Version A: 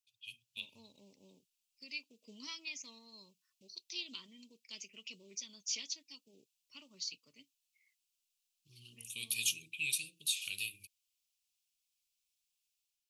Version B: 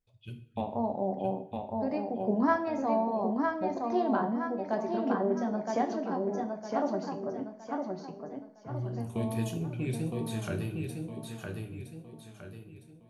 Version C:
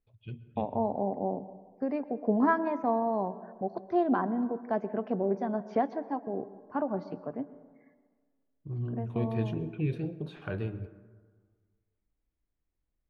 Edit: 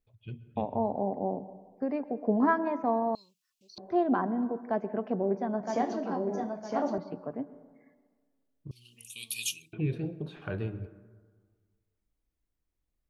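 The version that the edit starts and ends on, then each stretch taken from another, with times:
C
3.15–3.78 from A
5.63–6.98 from B
8.71–9.73 from A

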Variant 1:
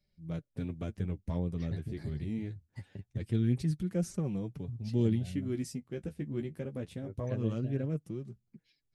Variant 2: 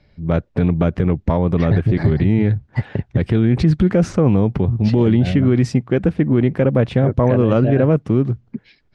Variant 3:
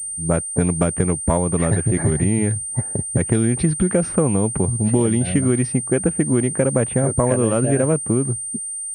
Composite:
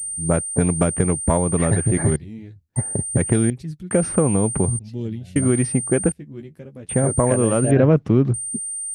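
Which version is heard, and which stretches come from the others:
3
2.16–2.76 from 1
3.5–3.91 from 1
4.79–5.36 from 1
6.12–6.89 from 1
7.71–8.34 from 2

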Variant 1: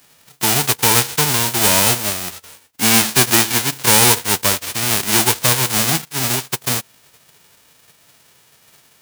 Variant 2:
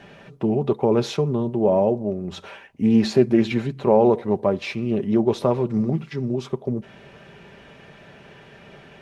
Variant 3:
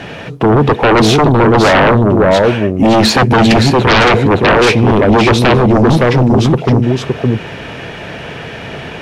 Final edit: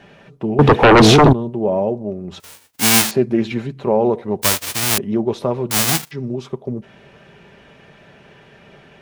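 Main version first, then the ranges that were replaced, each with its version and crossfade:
2
0.59–1.33 from 3
2.4–3.11 from 1
4.42–4.98 from 1
5.71–6.11 from 1

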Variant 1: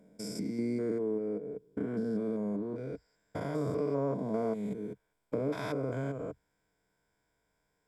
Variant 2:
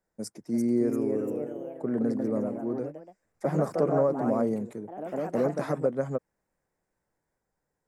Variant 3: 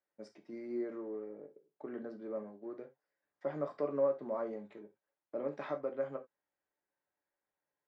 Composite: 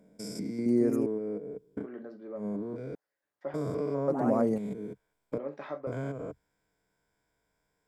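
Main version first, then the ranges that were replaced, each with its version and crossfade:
1
0.66–1.06 from 2
1.83–2.4 from 3, crossfade 0.10 s
2.95–3.54 from 3
4.08–4.58 from 2
5.38–5.87 from 3

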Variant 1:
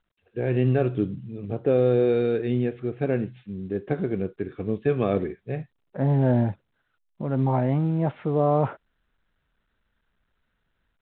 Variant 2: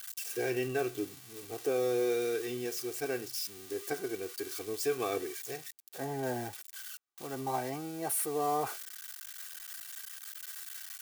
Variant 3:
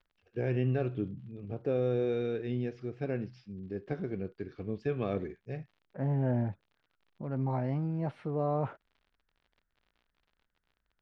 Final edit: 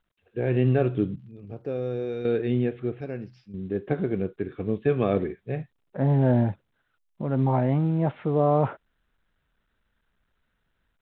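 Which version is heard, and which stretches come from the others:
1
1.16–2.25 from 3
3.01–3.54 from 3
not used: 2

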